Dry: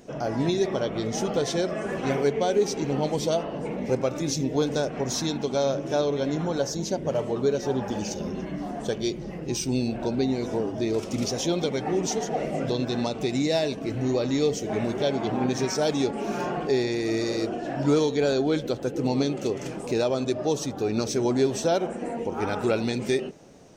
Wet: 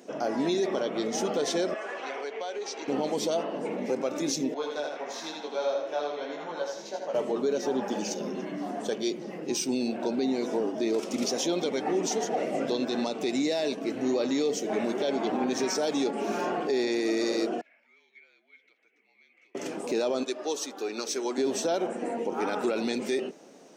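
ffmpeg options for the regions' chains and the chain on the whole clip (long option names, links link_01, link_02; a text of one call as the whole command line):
ffmpeg -i in.wav -filter_complex "[0:a]asettb=1/sr,asplit=3[link_01][link_02][link_03];[link_01]atrim=end=1.744[link_04];[link_02]atrim=start=1.74:end=2.88,asetpts=PTS-STARTPTS,afade=type=in:duration=0.004:curve=qsin,afade=type=out:start_time=1.136:duration=0.004:curve=qsin,highpass=670,lowpass=5200,acompressor=threshold=-31dB:ratio=4:attack=3.2:release=140:knee=1:detection=peak[link_05];[link_03]atrim=start=2.876[link_06];[link_04][link_05]acrossfade=duration=0.004:curve1=hsin:curve2=qsin[link_07];[link_07][link_06]acrossfade=duration=0.004:curve1=qsin:curve2=hsin,asettb=1/sr,asplit=3[link_08][link_09][link_10];[link_08]atrim=end=4.544[link_11];[link_09]atrim=start=4.54:end=7.14,asetpts=PTS-STARTPTS,afade=type=in:duration=0.004:curve=qsin,afade=type=out:start_time=2.596:duration=0.004:curve=qsin,acrossover=split=510 3700:gain=0.158 1 0.224[link_12][link_13][link_14];[link_12][link_13][link_14]amix=inputs=3:normalize=0,flanger=delay=17.5:depth=2.7:speed=1.6,aecho=1:1:81|162|243|324|405:0.631|0.246|0.096|0.0374|0.0146,atrim=end_sample=114660[link_15];[link_10]atrim=start=7.136[link_16];[link_11][link_15]acrossfade=duration=0.004:curve1=hsin:curve2=qsin[link_17];[link_17][link_16]acrossfade=duration=0.004:curve1=qsin:curve2=hsin,asettb=1/sr,asplit=3[link_18][link_19][link_20];[link_18]atrim=end=17.614[link_21];[link_19]atrim=start=17.61:end=19.55,asetpts=PTS-STARTPTS,afade=type=in:duration=0.004:curve=qsin,afade=type=out:start_time=1.936:duration=0.004:curve=qsin,acompressor=threshold=-28dB:ratio=5:attack=3.2:release=140:knee=1:detection=peak,afreqshift=-48,bandpass=frequency=2200:width_type=q:width=19[link_22];[link_20]atrim=start=19.546[link_23];[link_21][link_22]acrossfade=duration=0.004:curve1=hsin:curve2=qsin[link_24];[link_24][link_23]acrossfade=duration=0.004:curve1=qsin:curve2=hsin,asettb=1/sr,asplit=3[link_25][link_26][link_27];[link_25]atrim=end=20.234[link_28];[link_26]atrim=start=20.23:end=21.38,asetpts=PTS-STARTPTS,afade=type=in:duration=0.004:curve=qsin,afade=type=out:start_time=1.146:duration=0.004:curve=qsin,highpass=440,equalizer=frequency=640:width_type=o:width=0.83:gain=-7[link_29];[link_27]atrim=start=21.376[link_30];[link_28][link_29]acrossfade=duration=0.004:curve1=hsin:curve2=qsin[link_31];[link_31][link_30]acrossfade=duration=0.004:curve1=qsin:curve2=hsin,highpass=frequency=220:width=0.5412,highpass=frequency=220:width=1.3066,alimiter=limit=-19dB:level=0:latency=1:release=23" out.wav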